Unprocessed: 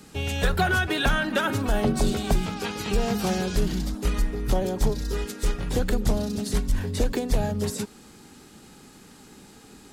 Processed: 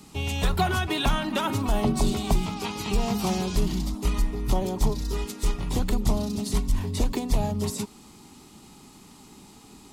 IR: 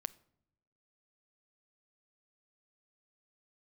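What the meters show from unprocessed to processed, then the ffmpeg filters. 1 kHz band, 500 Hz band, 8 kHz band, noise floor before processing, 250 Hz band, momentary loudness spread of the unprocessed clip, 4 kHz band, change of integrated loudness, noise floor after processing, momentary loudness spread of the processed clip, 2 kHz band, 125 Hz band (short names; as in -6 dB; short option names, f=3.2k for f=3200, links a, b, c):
+0.5 dB, -3.0 dB, 0.0 dB, -50 dBFS, 0.0 dB, 7 LU, -0.5 dB, -1.0 dB, -50 dBFS, 5 LU, -6.5 dB, 0.0 dB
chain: -af "equalizer=f=500:t=o:w=0.33:g=-9,equalizer=f=1k:t=o:w=0.33:g=6,equalizer=f=1.6k:t=o:w=0.33:g=-12"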